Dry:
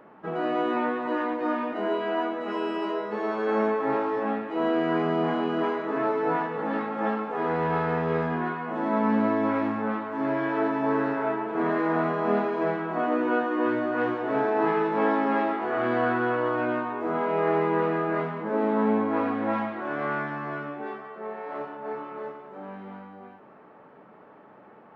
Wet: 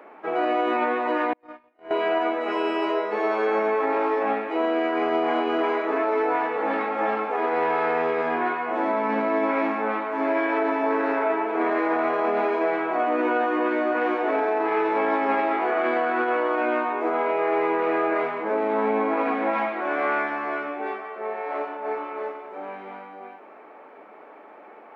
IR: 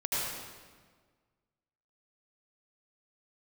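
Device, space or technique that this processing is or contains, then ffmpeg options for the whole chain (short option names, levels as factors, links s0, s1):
laptop speaker: -filter_complex "[0:a]highpass=f=290:w=0.5412,highpass=f=290:w=1.3066,equalizer=f=720:t=o:w=0.35:g=4,equalizer=f=2300:t=o:w=0.25:g=10,alimiter=limit=0.106:level=0:latency=1:release=30,asettb=1/sr,asplit=3[s0][s1][s2];[s0]atrim=end=1.334[s3];[s1]atrim=start=1.33:end=1.91,asetpts=PTS-STARTPTS,afade=t=in:d=0.004:c=qsin,afade=t=out:st=0.576:d=0.004:c=qsin,agate=range=0.00891:threshold=0.0631:ratio=16:detection=peak[s4];[s2]atrim=start=1.906[s5];[s3][s4]acrossfade=d=0.004:c1=hsin:c2=qsin[s6];[s6][s5]acrossfade=d=0.004:c1=qsin:c2=hsin,volume=1.68"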